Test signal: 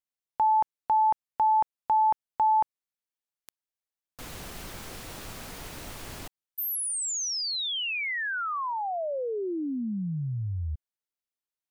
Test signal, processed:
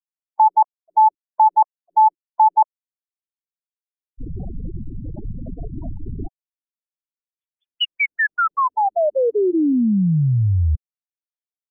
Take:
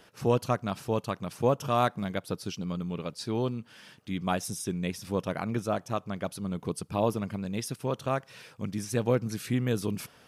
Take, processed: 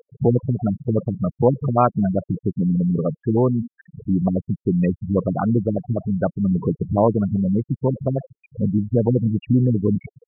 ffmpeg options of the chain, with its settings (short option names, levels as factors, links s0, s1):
-filter_complex "[0:a]aeval=exprs='val(0)+0.5*0.0168*sgn(val(0))':c=same,asplit=2[s0][s1];[s1]alimiter=limit=0.075:level=0:latency=1:release=130,volume=1.06[s2];[s0][s2]amix=inputs=2:normalize=0,afftfilt=real='re*gte(hypot(re,im),0.1)':imag='im*gte(hypot(re,im),0.1)':win_size=1024:overlap=0.75,afftfilt=real='re*lt(b*sr/1024,300*pow(3500/300,0.5+0.5*sin(2*PI*5*pts/sr)))':imag='im*lt(b*sr/1024,300*pow(3500/300,0.5+0.5*sin(2*PI*5*pts/sr)))':win_size=1024:overlap=0.75,volume=2"